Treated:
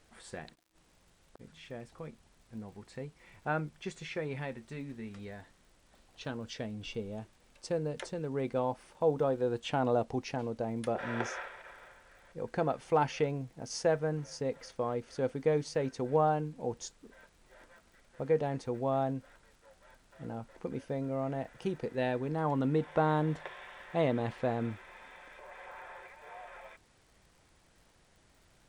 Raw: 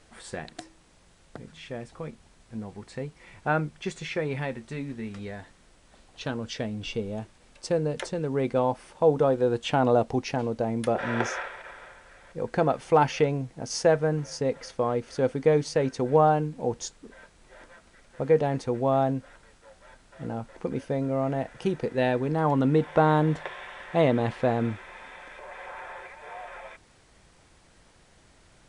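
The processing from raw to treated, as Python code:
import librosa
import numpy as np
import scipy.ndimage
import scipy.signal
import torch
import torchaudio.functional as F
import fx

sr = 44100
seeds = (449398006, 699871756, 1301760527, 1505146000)

y = fx.gate_flip(x, sr, shuts_db=-33.0, range_db=-33, at=(0.54, 1.39), fade=0.02)
y = fx.dmg_crackle(y, sr, seeds[0], per_s=100.0, level_db=-48.0)
y = F.gain(torch.from_numpy(y), -7.5).numpy()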